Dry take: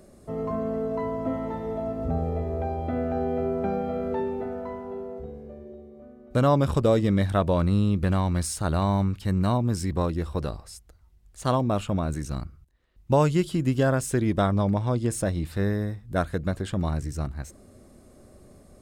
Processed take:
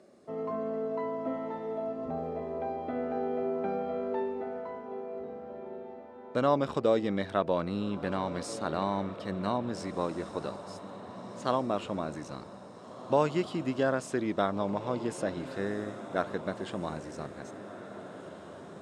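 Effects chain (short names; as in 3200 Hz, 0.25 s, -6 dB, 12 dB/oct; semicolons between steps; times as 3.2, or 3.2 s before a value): BPF 260–5400 Hz; diffused feedback echo 1.77 s, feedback 55%, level -12.5 dB; gain -3.5 dB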